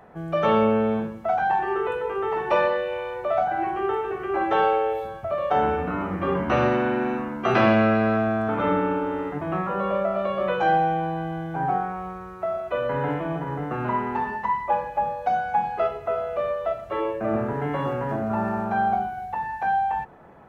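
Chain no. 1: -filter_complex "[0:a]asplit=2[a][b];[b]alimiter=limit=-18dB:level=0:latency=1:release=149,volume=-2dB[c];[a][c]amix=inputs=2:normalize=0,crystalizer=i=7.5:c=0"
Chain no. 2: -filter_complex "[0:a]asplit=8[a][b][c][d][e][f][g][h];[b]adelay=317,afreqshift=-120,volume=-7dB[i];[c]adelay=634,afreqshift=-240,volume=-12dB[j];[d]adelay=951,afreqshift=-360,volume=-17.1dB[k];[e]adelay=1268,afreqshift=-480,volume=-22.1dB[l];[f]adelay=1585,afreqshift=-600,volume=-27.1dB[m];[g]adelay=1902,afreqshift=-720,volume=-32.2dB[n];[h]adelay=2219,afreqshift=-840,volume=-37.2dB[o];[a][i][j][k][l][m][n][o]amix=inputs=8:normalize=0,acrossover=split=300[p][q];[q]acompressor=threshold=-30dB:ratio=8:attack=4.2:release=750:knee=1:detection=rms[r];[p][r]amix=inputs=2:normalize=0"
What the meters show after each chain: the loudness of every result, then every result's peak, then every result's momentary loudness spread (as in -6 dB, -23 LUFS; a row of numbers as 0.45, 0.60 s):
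-18.0, -30.0 LUFS; -1.0, -13.0 dBFS; 7, 9 LU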